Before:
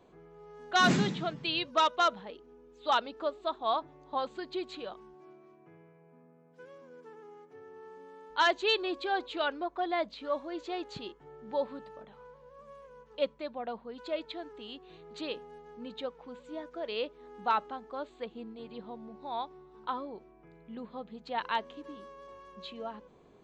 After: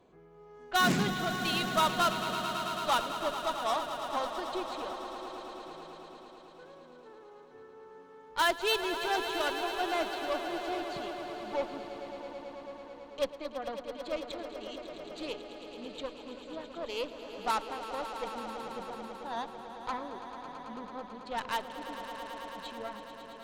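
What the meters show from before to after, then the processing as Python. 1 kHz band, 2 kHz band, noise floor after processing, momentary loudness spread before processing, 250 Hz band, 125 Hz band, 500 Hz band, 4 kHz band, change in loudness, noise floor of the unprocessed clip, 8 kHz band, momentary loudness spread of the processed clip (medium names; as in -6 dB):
0.0 dB, +0.5 dB, -53 dBFS, 23 LU, 0.0 dB, -0.5 dB, 0.0 dB, +0.5 dB, -0.5 dB, -60 dBFS, no reading, 18 LU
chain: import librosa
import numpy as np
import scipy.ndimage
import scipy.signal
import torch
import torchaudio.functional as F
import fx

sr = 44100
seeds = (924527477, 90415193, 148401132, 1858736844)

y = fx.cheby_harmonics(x, sr, harmonics=(6, 8), levels_db=(-18, -15), full_scale_db=-17.5)
y = fx.echo_swell(y, sr, ms=110, loudest=5, wet_db=-12.5)
y = F.gain(torch.from_numpy(y), -2.0).numpy()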